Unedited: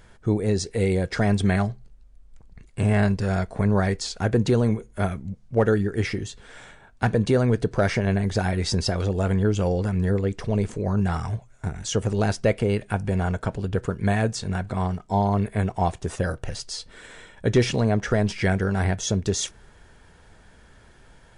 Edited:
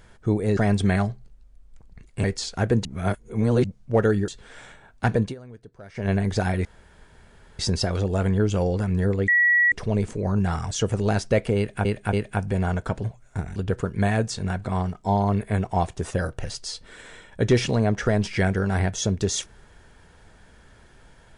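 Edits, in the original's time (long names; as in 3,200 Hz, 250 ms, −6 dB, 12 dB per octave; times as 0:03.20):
0:00.57–0:01.17: remove
0:02.84–0:03.87: remove
0:04.48–0:05.27: reverse
0:05.91–0:06.27: remove
0:07.19–0:08.08: duck −22.5 dB, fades 0.15 s
0:08.64: splice in room tone 0.94 s
0:10.33: insert tone 1,930 Hz −15 dBFS 0.44 s
0:11.32–0:11.84: move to 0:13.61
0:12.70–0:12.98: repeat, 3 plays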